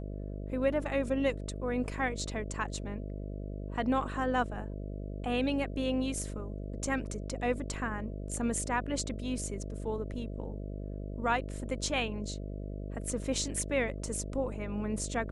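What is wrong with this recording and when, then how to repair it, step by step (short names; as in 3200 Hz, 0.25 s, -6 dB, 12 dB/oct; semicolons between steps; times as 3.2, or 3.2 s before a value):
buzz 50 Hz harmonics 13 -39 dBFS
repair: de-hum 50 Hz, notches 13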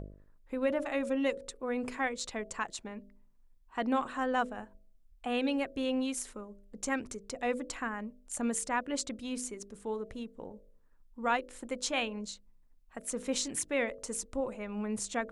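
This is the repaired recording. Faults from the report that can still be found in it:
none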